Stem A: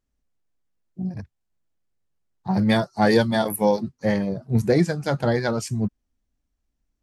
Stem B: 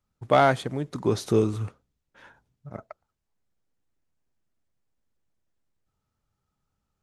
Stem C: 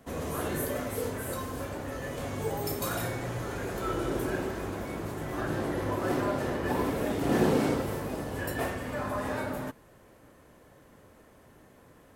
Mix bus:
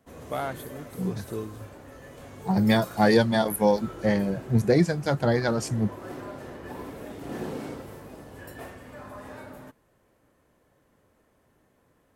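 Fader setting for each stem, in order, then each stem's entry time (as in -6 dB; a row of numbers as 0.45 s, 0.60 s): -1.5 dB, -12.5 dB, -9.5 dB; 0.00 s, 0.00 s, 0.00 s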